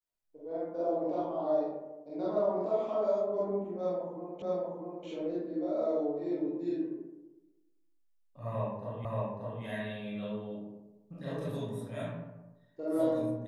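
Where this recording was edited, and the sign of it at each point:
4.42 s: repeat of the last 0.64 s
9.05 s: repeat of the last 0.58 s

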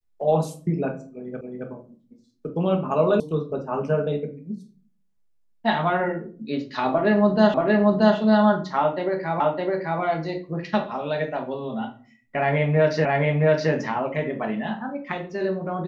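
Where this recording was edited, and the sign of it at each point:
1.41 s: repeat of the last 0.27 s
3.20 s: sound stops dead
7.54 s: repeat of the last 0.63 s
9.40 s: repeat of the last 0.61 s
13.05 s: repeat of the last 0.67 s

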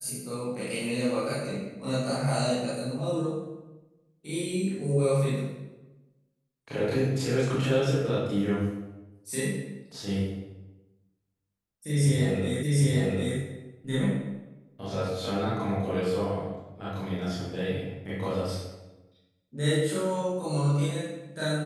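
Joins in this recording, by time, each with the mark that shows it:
12.63 s: repeat of the last 0.75 s

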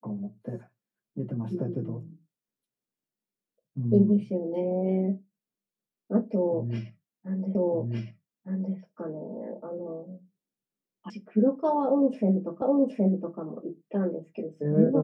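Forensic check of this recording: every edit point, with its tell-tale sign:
7.55 s: repeat of the last 1.21 s
11.10 s: sound stops dead
12.62 s: repeat of the last 0.77 s

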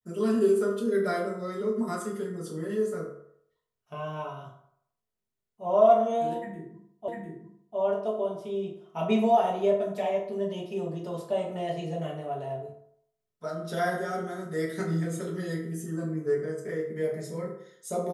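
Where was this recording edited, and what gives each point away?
7.08 s: repeat of the last 0.7 s

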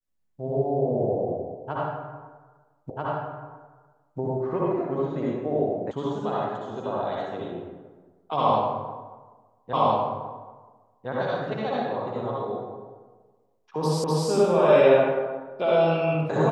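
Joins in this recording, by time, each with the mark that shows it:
2.90 s: repeat of the last 1.29 s
5.91 s: sound stops dead
9.73 s: repeat of the last 1.36 s
14.04 s: repeat of the last 0.25 s

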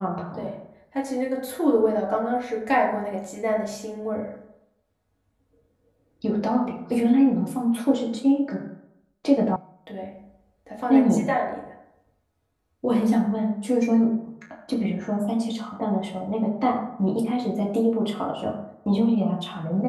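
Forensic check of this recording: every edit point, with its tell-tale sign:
9.56 s: sound stops dead

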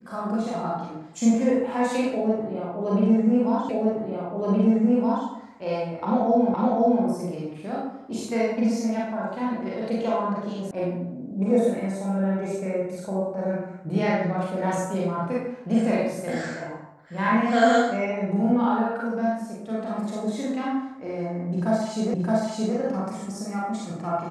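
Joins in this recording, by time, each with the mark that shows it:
3.69 s: repeat of the last 1.57 s
6.54 s: repeat of the last 0.51 s
10.71 s: sound stops dead
22.14 s: repeat of the last 0.62 s

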